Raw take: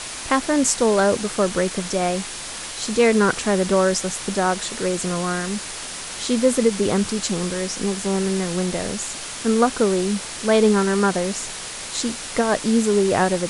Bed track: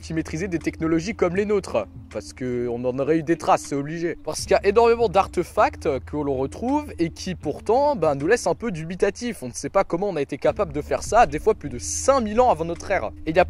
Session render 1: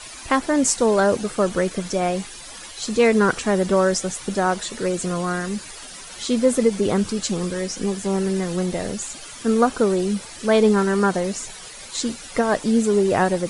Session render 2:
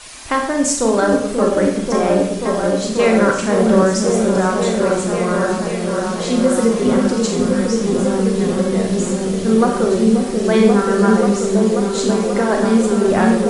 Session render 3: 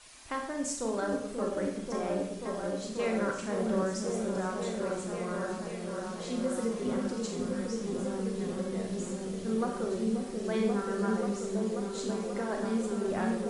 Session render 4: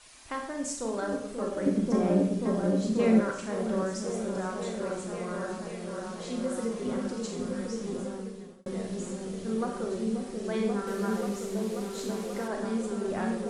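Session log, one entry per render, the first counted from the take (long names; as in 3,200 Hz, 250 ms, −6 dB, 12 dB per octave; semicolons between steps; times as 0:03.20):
broadband denoise 12 dB, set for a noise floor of −33 dBFS
echo whose low-pass opens from repeat to repeat 535 ms, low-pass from 400 Hz, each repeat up 1 octave, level 0 dB; four-comb reverb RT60 0.63 s, combs from 28 ms, DRR 2 dB
level −17 dB
0:01.66–0:03.21: parametric band 200 Hz +12.5 dB 2 octaves; 0:07.92–0:08.66: fade out; 0:10.87–0:12.48: linear delta modulator 64 kbit/s, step −39.5 dBFS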